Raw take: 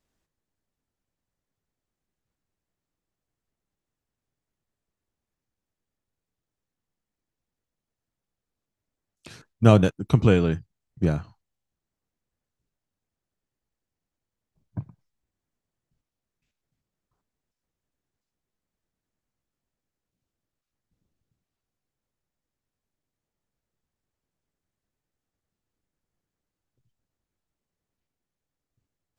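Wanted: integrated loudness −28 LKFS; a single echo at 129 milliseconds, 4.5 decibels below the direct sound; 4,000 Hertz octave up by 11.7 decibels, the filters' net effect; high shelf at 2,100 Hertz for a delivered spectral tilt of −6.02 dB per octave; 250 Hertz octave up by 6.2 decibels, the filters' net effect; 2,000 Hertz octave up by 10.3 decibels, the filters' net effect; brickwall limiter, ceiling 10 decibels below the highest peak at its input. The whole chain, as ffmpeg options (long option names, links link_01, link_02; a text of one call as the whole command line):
ffmpeg -i in.wav -af "equalizer=frequency=250:width_type=o:gain=8,equalizer=frequency=2000:width_type=o:gain=8,highshelf=frequency=2100:gain=8,equalizer=frequency=4000:width_type=o:gain=4.5,alimiter=limit=-5.5dB:level=0:latency=1,aecho=1:1:129:0.596,volume=-8dB" out.wav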